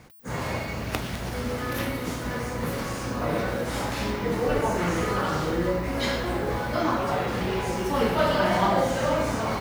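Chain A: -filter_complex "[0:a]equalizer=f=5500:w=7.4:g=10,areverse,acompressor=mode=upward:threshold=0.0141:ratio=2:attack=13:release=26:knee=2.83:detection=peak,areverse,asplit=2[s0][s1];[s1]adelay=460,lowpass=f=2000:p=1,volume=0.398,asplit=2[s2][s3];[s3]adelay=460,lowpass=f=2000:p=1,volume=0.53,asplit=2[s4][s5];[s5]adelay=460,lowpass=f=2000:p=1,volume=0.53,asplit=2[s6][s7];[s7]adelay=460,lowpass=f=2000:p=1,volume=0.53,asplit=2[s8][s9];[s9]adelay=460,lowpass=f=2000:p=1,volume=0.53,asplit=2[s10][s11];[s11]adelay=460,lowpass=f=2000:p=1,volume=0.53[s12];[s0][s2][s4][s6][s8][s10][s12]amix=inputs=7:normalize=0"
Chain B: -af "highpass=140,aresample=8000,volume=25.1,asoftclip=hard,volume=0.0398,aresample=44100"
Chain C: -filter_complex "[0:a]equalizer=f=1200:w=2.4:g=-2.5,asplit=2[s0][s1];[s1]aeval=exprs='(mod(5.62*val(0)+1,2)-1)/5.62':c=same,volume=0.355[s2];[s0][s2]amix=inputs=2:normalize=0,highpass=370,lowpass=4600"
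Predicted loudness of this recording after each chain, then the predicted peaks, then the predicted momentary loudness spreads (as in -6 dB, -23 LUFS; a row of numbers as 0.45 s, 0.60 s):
-26.0 LUFS, -31.5 LUFS, -27.0 LUFS; -6.0 dBFS, -23.5 dBFS, -9.5 dBFS; 8 LU, 4 LU, 10 LU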